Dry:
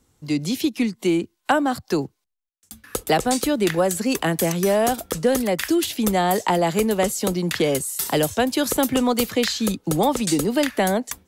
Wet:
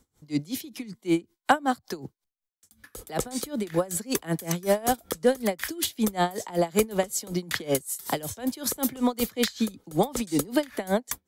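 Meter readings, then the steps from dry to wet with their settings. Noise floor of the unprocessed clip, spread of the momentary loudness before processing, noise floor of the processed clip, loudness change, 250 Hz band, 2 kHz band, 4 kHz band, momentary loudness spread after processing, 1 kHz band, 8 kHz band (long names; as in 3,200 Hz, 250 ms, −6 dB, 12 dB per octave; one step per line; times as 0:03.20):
−73 dBFS, 4 LU, −84 dBFS, −6.0 dB, −6.5 dB, −6.5 dB, −7.0 dB, 8 LU, −6.0 dB, −5.0 dB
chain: high-shelf EQ 12,000 Hz +4 dB
notch filter 2,700 Hz, Q 10
tremolo with a sine in dB 5.3 Hz, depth 23 dB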